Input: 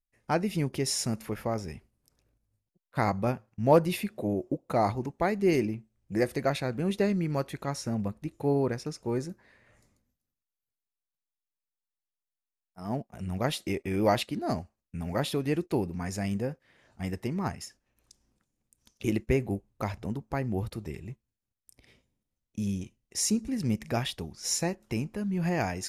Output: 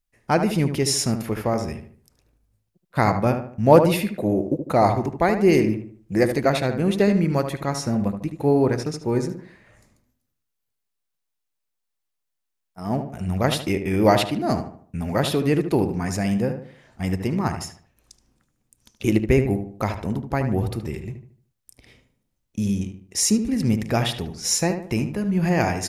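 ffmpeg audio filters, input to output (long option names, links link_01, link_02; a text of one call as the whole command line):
ffmpeg -i in.wav -filter_complex "[0:a]asplit=2[link_01][link_02];[link_02]adelay=75,lowpass=frequency=2200:poles=1,volume=-7.5dB,asplit=2[link_03][link_04];[link_04]adelay=75,lowpass=frequency=2200:poles=1,volume=0.4,asplit=2[link_05][link_06];[link_06]adelay=75,lowpass=frequency=2200:poles=1,volume=0.4,asplit=2[link_07][link_08];[link_08]adelay=75,lowpass=frequency=2200:poles=1,volume=0.4,asplit=2[link_09][link_10];[link_10]adelay=75,lowpass=frequency=2200:poles=1,volume=0.4[link_11];[link_01][link_03][link_05][link_07][link_09][link_11]amix=inputs=6:normalize=0,volume=7.5dB" out.wav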